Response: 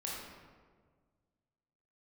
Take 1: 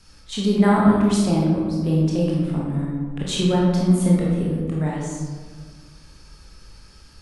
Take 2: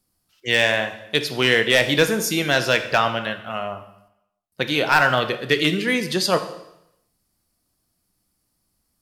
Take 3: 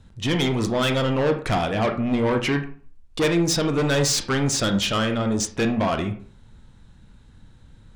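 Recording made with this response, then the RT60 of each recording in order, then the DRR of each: 1; 1.6, 0.80, 0.45 s; -5.0, 8.5, 5.5 dB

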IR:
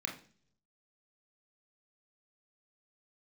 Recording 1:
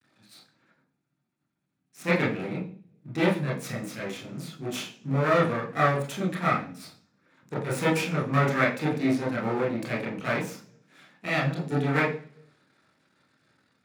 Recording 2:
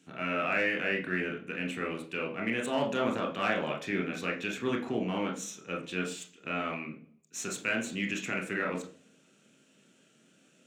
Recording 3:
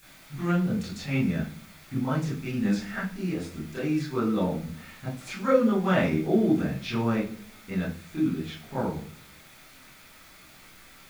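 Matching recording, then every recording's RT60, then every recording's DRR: 2; 0.50, 0.50, 0.45 s; -6.5, 1.0, -10.5 dB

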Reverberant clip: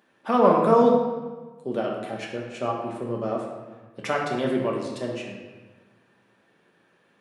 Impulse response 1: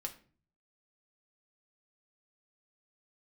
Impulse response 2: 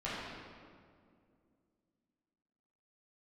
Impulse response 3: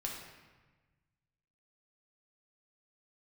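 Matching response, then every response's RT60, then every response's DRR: 3; 0.40, 2.2, 1.3 s; 2.5, -10.5, -2.0 dB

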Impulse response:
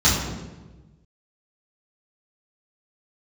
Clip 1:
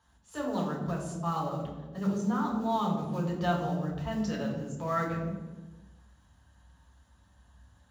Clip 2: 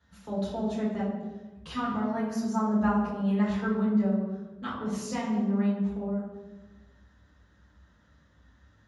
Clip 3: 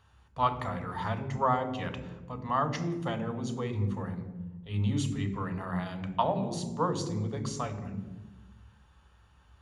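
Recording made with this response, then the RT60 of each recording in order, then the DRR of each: 2; 1.2, 1.2, 1.2 s; -2.5, -10.5, 7.0 dB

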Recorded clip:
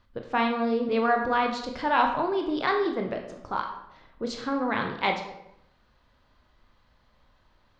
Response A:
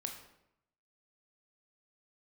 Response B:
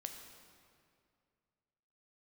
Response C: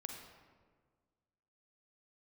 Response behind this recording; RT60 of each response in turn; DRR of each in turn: A; 0.80, 2.3, 1.6 s; 3.0, 4.0, 2.5 dB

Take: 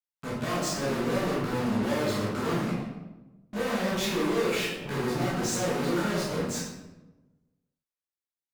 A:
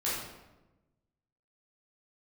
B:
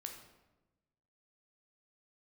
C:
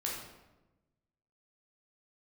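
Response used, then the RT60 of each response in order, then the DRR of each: A; 1.1, 1.1, 1.1 s; -9.0, 2.5, -4.0 dB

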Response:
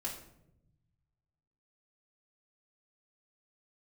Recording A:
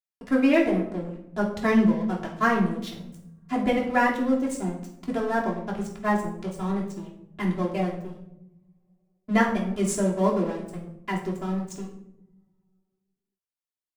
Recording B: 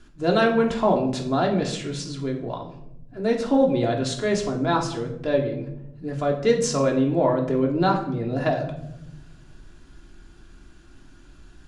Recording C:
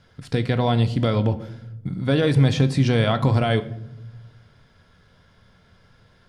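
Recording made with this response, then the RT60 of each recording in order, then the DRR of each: A; 0.80 s, 0.80 s, not exponential; -4.5, -0.5, 8.5 dB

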